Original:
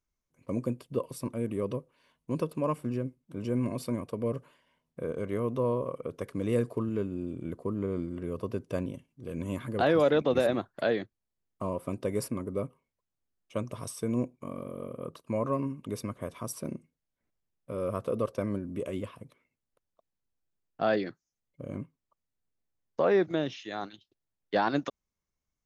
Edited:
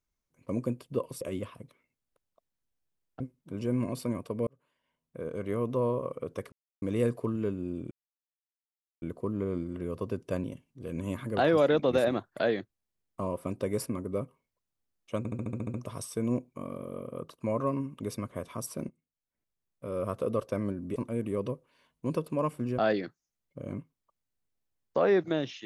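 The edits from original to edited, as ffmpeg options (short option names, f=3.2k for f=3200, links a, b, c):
-filter_complex "[0:a]asplit=17[a][b][c][d][e][f][g][h][i][j][k][l][m][n][o][p][q];[a]atrim=end=1.212[r];[b]atrim=start=18.818:end=20.812[s];[c]atrim=start=3.028:end=4.3,asetpts=PTS-STARTPTS,afade=t=out:st=1.268:d=0.004:c=hsin[t];[d]atrim=start=4.3:end=6.35,asetpts=PTS-STARTPTS,afade=t=in:d=1.1,afade=t=out:st=2.046:d=0.004:c=hsin,apad=pad_dur=0.3[u];[e]atrim=start=6.35:end=7.44,asetpts=PTS-STARTPTS,afade=t=in:d=0.004:c=hsin,afade=t=out:st=1.086:d=0.004:c=hsin,apad=pad_dur=1.11[v];[f]atrim=start=7.44:end=13.672,asetpts=PTS-STARTPTS,afade=t=in:d=0.004:c=hsin[w];[g]atrim=start=13.598:end=13.672[x];[h]atrim=start=13.598:end=13.672[y];[i]atrim=start=13.598:end=13.672[z];[j]atrim=start=13.598:end=13.672[aa];[k]atrim=start=13.598:end=13.672[ab];[l]atrim=start=13.598:end=13.672[ac];[m]atrim=start=13.598:end=13.672[ad];[n]atrim=start=13.598:end=16.75,asetpts=PTS-STARTPTS,afade=t=out:st=3.148:d=0.004:c=hsin:silence=0.133352[ae];[o]atrim=start=16.75:end=18.822,asetpts=PTS-STARTPTS,afade=t=in:d=1.2:silence=0.133352[af];[p]atrim=start=1.208:end=3.032[ag];[q]atrim=start=20.808[ah];[r][s]acrossfade=d=0.004:c1=hsin:c2=hsin[ai];[t][u][v][w]concat=n=4:v=0:a=1[aj];[ai][aj]acrossfade=d=0.004:c1=hsin:c2=hsin[ak];[ak][x]acrossfade=d=0.004:c1=hsin:c2=hsin[al];[al][y]acrossfade=d=0.004:c1=hsin:c2=hsin[am];[am][z]acrossfade=d=0.004:c1=hsin:c2=hsin[an];[an][aa]acrossfade=d=0.004:c1=hsin:c2=hsin[ao];[ao][ab]acrossfade=d=0.004:c1=hsin:c2=hsin[ap];[ap][ac]acrossfade=d=0.004:c1=hsin:c2=hsin[aq];[aq][ad]acrossfade=d=0.004:c1=hsin:c2=hsin[ar];[ae][af]concat=n=2:v=0:a=1[as];[ar][as]acrossfade=d=0.004:c1=hsin:c2=hsin[at];[at][ag]acrossfade=d=0.004:c1=hsin:c2=hsin[au];[au][ah]acrossfade=d=0.004:c1=hsin:c2=hsin"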